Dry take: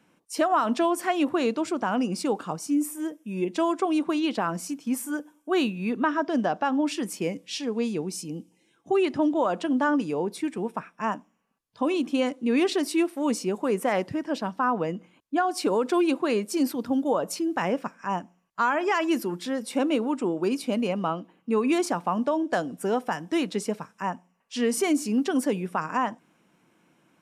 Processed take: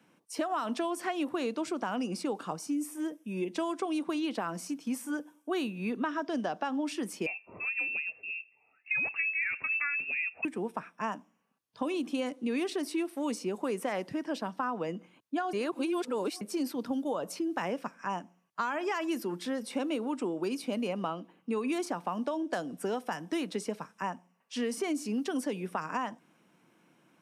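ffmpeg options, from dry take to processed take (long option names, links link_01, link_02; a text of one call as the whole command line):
ffmpeg -i in.wav -filter_complex "[0:a]asettb=1/sr,asplit=3[link_01][link_02][link_03];[link_01]atrim=end=7.264[link_04];[link_02]atrim=start=7.26:end=10.45,asetpts=PTS-STARTPTS,afade=type=in:duration=0.004:curve=qsin,afade=type=out:start_time=3.186:duration=0.004:curve=qsin,lowpass=frequency=2500:width_type=q:width=0.5098,lowpass=frequency=2500:width_type=q:width=0.6013,lowpass=frequency=2500:width_type=q:width=0.9,lowpass=frequency=2500:width_type=q:width=2.563,afreqshift=-2900[link_05];[link_03]atrim=start=10.446[link_06];[link_04][link_05]acrossfade=duration=0.004:curve1=hsin:curve2=qsin[link_07];[link_07][link_06]acrossfade=duration=0.004:curve1=qsin:curve2=hsin,asplit=3[link_08][link_09][link_10];[link_08]atrim=end=15.532[link_11];[link_09]atrim=start=15.528:end=16.412,asetpts=PTS-STARTPTS,areverse[link_12];[link_10]atrim=start=16.408[link_13];[link_11][link_12]acrossfade=duration=0.004:curve1=hsin:curve2=hsin[link_14];[link_14][link_13]acrossfade=duration=0.004:curve1=hsin:curve2=hsin,highpass=95,bandreject=frequency=7200:width=14,acrossover=split=170|2600|7500[link_15][link_16][link_17][link_18];[link_15]acompressor=threshold=-52dB:ratio=4[link_19];[link_16]acompressor=threshold=-29dB:ratio=4[link_20];[link_17]acompressor=threshold=-44dB:ratio=4[link_21];[link_18]acompressor=threshold=-48dB:ratio=4[link_22];[link_19][link_20][link_21][link_22]amix=inputs=4:normalize=0,volume=-1.5dB" out.wav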